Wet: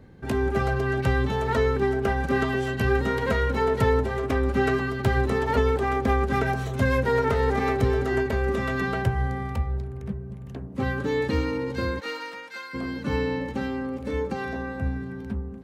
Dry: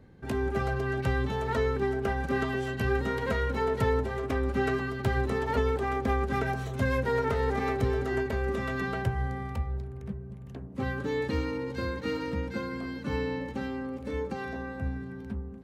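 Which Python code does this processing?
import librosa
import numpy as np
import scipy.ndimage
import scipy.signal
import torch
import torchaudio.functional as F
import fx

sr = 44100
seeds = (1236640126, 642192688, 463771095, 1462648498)

y = fx.highpass(x, sr, hz=fx.line((11.99, 600.0), (12.73, 1500.0)), slope=12, at=(11.99, 12.73), fade=0.02)
y = y * 10.0 ** (5.0 / 20.0)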